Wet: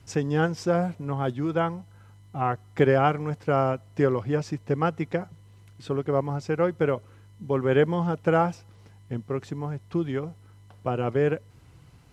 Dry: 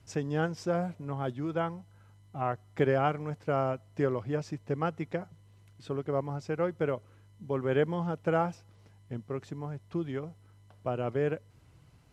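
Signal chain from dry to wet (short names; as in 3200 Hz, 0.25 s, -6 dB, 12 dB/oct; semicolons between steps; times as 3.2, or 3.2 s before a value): notch 620 Hz, Q 12; gain +6.5 dB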